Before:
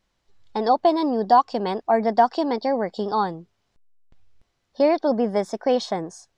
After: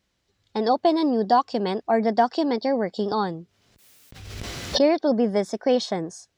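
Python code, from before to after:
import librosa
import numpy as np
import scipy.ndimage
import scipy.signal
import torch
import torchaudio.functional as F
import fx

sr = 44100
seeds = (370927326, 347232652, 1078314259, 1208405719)

y = scipy.signal.sosfilt(scipy.signal.butter(2, 56.0, 'highpass', fs=sr, output='sos'), x)
y = fx.peak_eq(y, sr, hz=920.0, db=-6.5, octaves=1.2)
y = fx.pre_swell(y, sr, db_per_s=39.0, at=(3.11, 4.82))
y = F.gain(torch.from_numpy(y), 2.0).numpy()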